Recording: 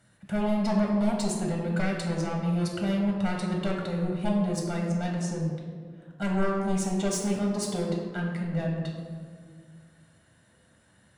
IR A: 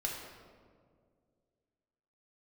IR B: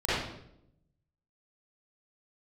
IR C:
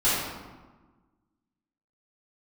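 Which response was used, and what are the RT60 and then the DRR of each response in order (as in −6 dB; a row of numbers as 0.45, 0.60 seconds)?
A; 2.0, 0.75, 1.3 seconds; −2.0, −13.5, −12.5 decibels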